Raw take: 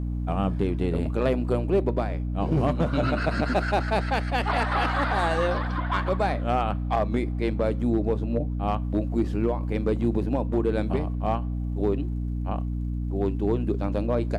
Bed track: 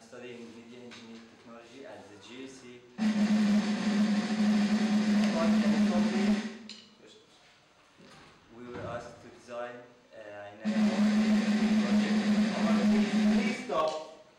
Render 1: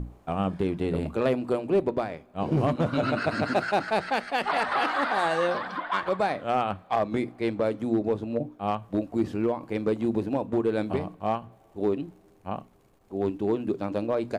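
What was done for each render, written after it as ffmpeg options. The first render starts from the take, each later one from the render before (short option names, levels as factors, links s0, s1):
-af "bandreject=f=60:t=h:w=6,bandreject=f=120:t=h:w=6,bandreject=f=180:t=h:w=6,bandreject=f=240:t=h:w=6,bandreject=f=300:t=h:w=6"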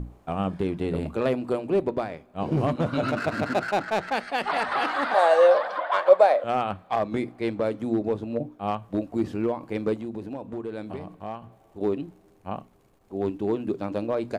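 -filter_complex "[0:a]asettb=1/sr,asplit=3[s0][s1][s2];[s0]atrim=end=3.084[s3];[s1]atrim=start=3.08:end=4.13,asetpts=PTS-STARTPTS,afade=t=in:d=0.004:c=qsin,afade=t=out:st=1.046:d=0.004:c=qsin,adynamicsmooth=sensitivity=7:basefreq=1600[s4];[s2]atrim=start=4.126[s5];[s3][s4]acrossfade=d=0.004:c1=hsin:c2=qsin[s6];[s6][s5]acrossfade=d=0.004:c1=qsin:c2=hsin,asettb=1/sr,asplit=3[s7][s8][s9];[s7]atrim=end=5.144[s10];[s8]atrim=start=5.14:end=6.44,asetpts=PTS-STARTPTS,afade=t=in:d=0.004:c=qsin,afade=t=out:st=1.296:d=0.004:c=qsin,highpass=f=570:t=q:w=5.1[s11];[s9]atrim=start=6.436[s12];[s10][s11]acrossfade=d=0.004:c1=hsin:c2=qsin[s13];[s13][s12]acrossfade=d=0.004:c1=qsin:c2=hsin,asettb=1/sr,asplit=3[s14][s15][s16];[s14]atrim=end=9.954[s17];[s15]atrim=start=9.95:end=11.81,asetpts=PTS-STARTPTS,afade=t=in:d=0.004:c=qsin,afade=t=out:st=1.856:d=0.004:c=qsin,acompressor=threshold=0.0158:ratio=2:attack=3.2:release=140:knee=1:detection=peak[s18];[s16]atrim=start=11.806[s19];[s17][s18]acrossfade=d=0.004:c1=hsin:c2=qsin[s20];[s20][s19]acrossfade=d=0.004:c1=qsin:c2=hsin"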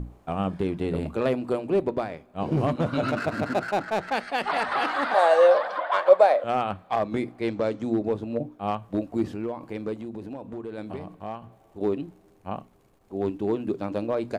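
-filter_complex "[0:a]asettb=1/sr,asplit=3[s0][s1][s2];[s0]atrim=end=3.244[s3];[s1]atrim=start=3.24:end=4.09,asetpts=PTS-STARTPTS,afade=t=in:d=0.004:c=qsin,afade=t=out:st=0.846:d=0.004:c=qsin,equalizer=f=3200:w=0.39:g=-3[s4];[s2]atrim=start=4.086[s5];[s3][s4]acrossfade=d=0.004:c1=hsin:c2=qsin[s6];[s6][s5]acrossfade=d=0.004:c1=qsin:c2=hsin,asettb=1/sr,asplit=3[s7][s8][s9];[s7]atrim=end=7.484[s10];[s8]atrim=start=7.48:end=7.9,asetpts=PTS-STARTPTS,afade=t=in:d=0.004:c=qsin,afade=t=out:st=0.416:d=0.004:c=qsin,lowpass=f=6500:t=q:w=1.9[s11];[s9]atrim=start=7.896[s12];[s10][s11]acrossfade=d=0.004:c1=hsin:c2=qsin[s13];[s13][s12]acrossfade=d=0.004:c1=qsin:c2=hsin,asettb=1/sr,asplit=3[s14][s15][s16];[s14]atrim=end=9.314[s17];[s15]atrim=start=9.31:end=10.78,asetpts=PTS-STARTPTS,afade=t=in:d=0.004:c=qsin,afade=t=out:st=1.466:d=0.004:c=qsin,acompressor=threshold=0.0178:ratio=1.5:attack=3.2:release=140:knee=1:detection=peak[s18];[s16]atrim=start=10.776[s19];[s17][s18]acrossfade=d=0.004:c1=hsin:c2=qsin[s20];[s20][s19]acrossfade=d=0.004:c1=qsin:c2=hsin"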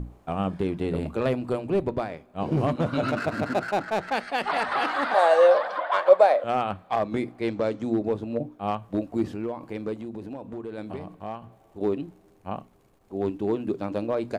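-filter_complex "[0:a]asplit=3[s0][s1][s2];[s0]afade=t=out:st=1.19:d=0.02[s3];[s1]asubboost=boost=4:cutoff=170,afade=t=in:st=1.19:d=0.02,afade=t=out:st=1.99:d=0.02[s4];[s2]afade=t=in:st=1.99:d=0.02[s5];[s3][s4][s5]amix=inputs=3:normalize=0"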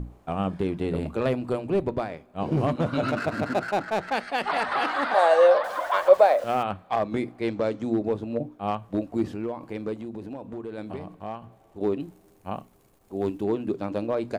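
-filter_complex "[0:a]asettb=1/sr,asplit=3[s0][s1][s2];[s0]atrim=end=5.644[s3];[s1]atrim=start=5.64:end=6.63,asetpts=PTS-STARTPTS,afade=t=in:d=0.004:c=qsin,afade=t=out:st=0.986:d=0.004:c=qsin,aeval=exprs='val(0)*gte(abs(val(0)),0.01)':c=same[s4];[s2]atrim=start=6.626[s5];[s3][s4]acrossfade=d=0.004:c1=hsin:c2=qsin[s6];[s6][s5]acrossfade=d=0.004:c1=qsin:c2=hsin,asettb=1/sr,asplit=3[s7][s8][s9];[s7]atrim=end=12.004[s10];[s8]atrim=start=12:end=13.44,asetpts=PTS-STARTPTS,afade=t=in:d=0.004:c=qsin,afade=t=out:st=1.436:d=0.004:c=qsin,highshelf=f=6700:g=10.5[s11];[s9]atrim=start=13.436[s12];[s10][s11]acrossfade=d=0.004:c1=hsin:c2=qsin[s13];[s13][s12]acrossfade=d=0.004:c1=qsin:c2=hsin"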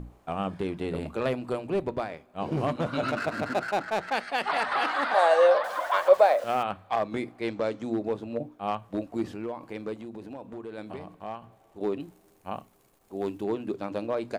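-af "lowshelf=f=470:g=-6,bandreject=f=50:t=h:w=6,bandreject=f=100:t=h:w=6"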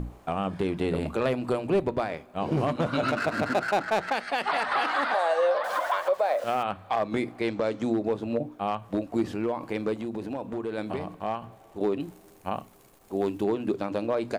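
-filter_complex "[0:a]asplit=2[s0][s1];[s1]acompressor=threshold=0.0251:ratio=6,volume=1.33[s2];[s0][s2]amix=inputs=2:normalize=0,alimiter=limit=0.158:level=0:latency=1:release=222"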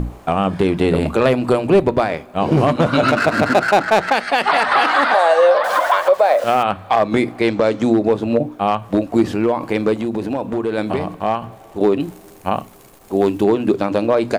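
-af "volume=3.76"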